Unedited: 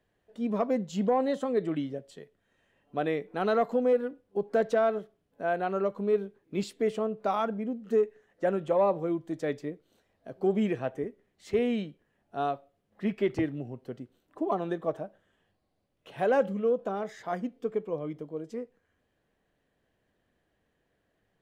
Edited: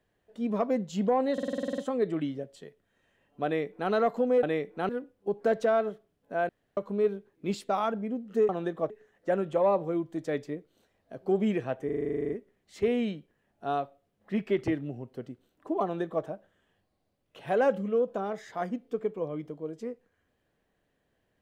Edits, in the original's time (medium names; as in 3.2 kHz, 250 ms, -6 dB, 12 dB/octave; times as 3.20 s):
1.33 s: stutter 0.05 s, 10 plays
3.00–3.46 s: copy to 3.98 s
5.58–5.86 s: room tone
6.78–7.25 s: delete
11.01 s: stutter 0.04 s, 12 plays
14.54–14.95 s: copy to 8.05 s